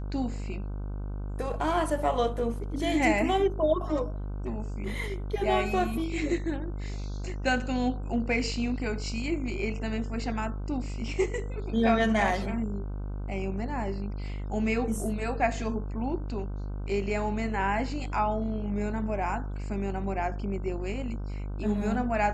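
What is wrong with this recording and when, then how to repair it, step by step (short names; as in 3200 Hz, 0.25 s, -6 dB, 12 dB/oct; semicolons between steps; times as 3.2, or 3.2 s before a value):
buzz 50 Hz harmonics 31 -34 dBFS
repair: de-hum 50 Hz, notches 31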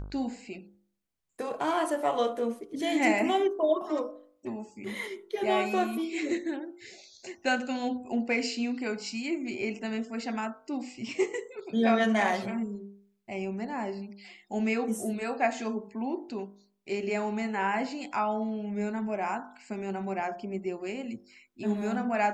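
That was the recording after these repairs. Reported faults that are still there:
none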